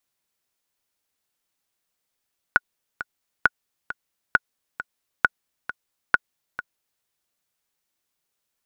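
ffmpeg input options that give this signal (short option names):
-f lavfi -i "aevalsrc='pow(10,(-2-14*gte(mod(t,2*60/134),60/134))/20)*sin(2*PI*1460*mod(t,60/134))*exp(-6.91*mod(t,60/134)/0.03)':d=4.47:s=44100"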